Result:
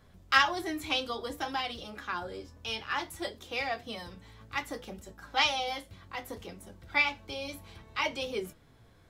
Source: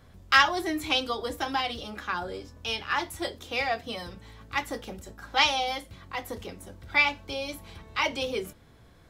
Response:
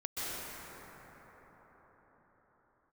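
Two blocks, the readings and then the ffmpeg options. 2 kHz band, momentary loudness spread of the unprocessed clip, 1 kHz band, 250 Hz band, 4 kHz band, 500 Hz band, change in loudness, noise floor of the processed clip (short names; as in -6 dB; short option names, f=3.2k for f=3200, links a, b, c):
-4.0 dB, 16 LU, -4.5 dB, -4.5 dB, -4.0 dB, -4.5 dB, -4.5 dB, -60 dBFS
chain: -af "flanger=delay=4.5:depth=6.7:regen=65:speed=0.6:shape=triangular"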